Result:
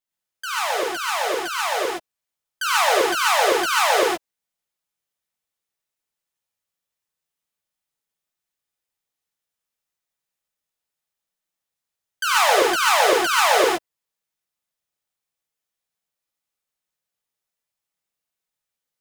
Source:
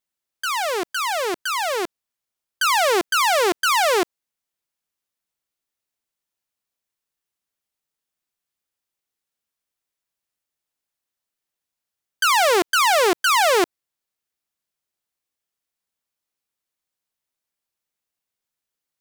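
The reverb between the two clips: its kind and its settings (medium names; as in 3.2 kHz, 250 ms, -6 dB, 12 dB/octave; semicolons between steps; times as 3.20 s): gated-style reverb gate 150 ms rising, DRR -5 dB; trim -6 dB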